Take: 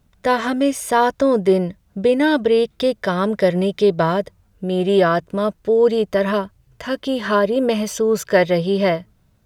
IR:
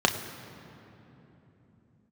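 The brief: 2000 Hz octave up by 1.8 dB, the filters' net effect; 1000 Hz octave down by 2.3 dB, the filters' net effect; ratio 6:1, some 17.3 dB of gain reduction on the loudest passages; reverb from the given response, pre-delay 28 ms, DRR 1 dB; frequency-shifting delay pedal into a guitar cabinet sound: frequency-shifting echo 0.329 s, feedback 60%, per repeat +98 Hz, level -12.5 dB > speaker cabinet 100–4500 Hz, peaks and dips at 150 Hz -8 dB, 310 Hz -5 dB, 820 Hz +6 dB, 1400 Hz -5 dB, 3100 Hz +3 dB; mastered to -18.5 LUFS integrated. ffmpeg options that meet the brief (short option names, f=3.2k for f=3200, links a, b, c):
-filter_complex "[0:a]equalizer=f=1k:t=o:g=-6.5,equalizer=f=2k:t=o:g=6.5,acompressor=threshold=-30dB:ratio=6,asplit=2[a][b];[1:a]atrim=start_sample=2205,adelay=28[c];[b][c]afir=irnorm=-1:irlink=0,volume=-16dB[d];[a][d]amix=inputs=2:normalize=0,asplit=8[e][f][g][h][i][j][k][l];[f]adelay=329,afreqshift=98,volume=-12.5dB[m];[g]adelay=658,afreqshift=196,volume=-16.9dB[n];[h]adelay=987,afreqshift=294,volume=-21.4dB[o];[i]adelay=1316,afreqshift=392,volume=-25.8dB[p];[j]adelay=1645,afreqshift=490,volume=-30.2dB[q];[k]adelay=1974,afreqshift=588,volume=-34.7dB[r];[l]adelay=2303,afreqshift=686,volume=-39.1dB[s];[e][m][n][o][p][q][r][s]amix=inputs=8:normalize=0,highpass=100,equalizer=f=150:t=q:w=4:g=-8,equalizer=f=310:t=q:w=4:g=-5,equalizer=f=820:t=q:w=4:g=6,equalizer=f=1.4k:t=q:w=4:g=-5,equalizer=f=3.1k:t=q:w=4:g=3,lowpass=f=4.5k:w=0.5412,lowpass=f=4.5k:w=1.3066,volume=12dB"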